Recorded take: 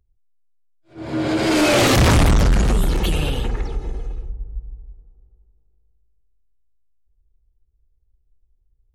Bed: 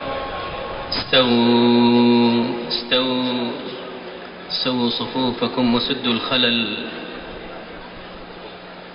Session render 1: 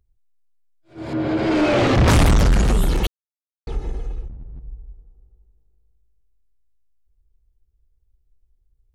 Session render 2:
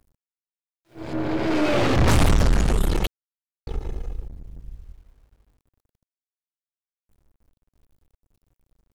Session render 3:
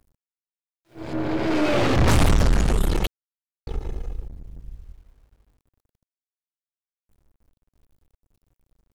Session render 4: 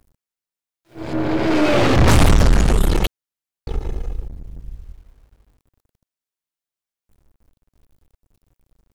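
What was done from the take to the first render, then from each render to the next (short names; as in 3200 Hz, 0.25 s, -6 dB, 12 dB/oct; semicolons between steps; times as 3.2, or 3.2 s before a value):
1.13–2.08 tape spacing loss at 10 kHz 23 dB; 3.07–3.67 mute; 4.27–4.68 hard clip -32.5 dBFS
half-wave gain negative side -12 dB; bit-crush 11-bit
nothing audible
gain +5 dB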